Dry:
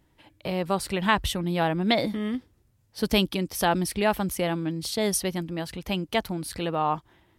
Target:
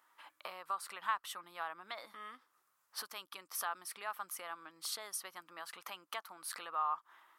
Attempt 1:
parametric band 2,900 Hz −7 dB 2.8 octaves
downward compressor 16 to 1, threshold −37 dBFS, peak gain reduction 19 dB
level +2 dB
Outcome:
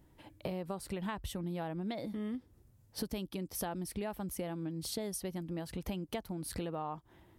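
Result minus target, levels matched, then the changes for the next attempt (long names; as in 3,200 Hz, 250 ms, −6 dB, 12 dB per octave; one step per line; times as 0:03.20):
1,000 Hz band −7.5 dB
add after downward compressor: high-pass with resonance 1,200 Hz, resonance Q 4.9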